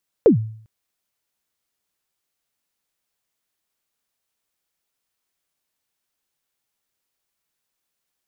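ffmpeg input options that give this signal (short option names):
-f lavfi -i "aevalsrc='0.531*pow(10,-3*t/0.56)*sin(2*PI*(520*0.111/log(110/520)*(exp(log(110/520)*min(t,0.111)/0.111)-1)+110*max(t-0.111,0)))':d=0.4:s=44100"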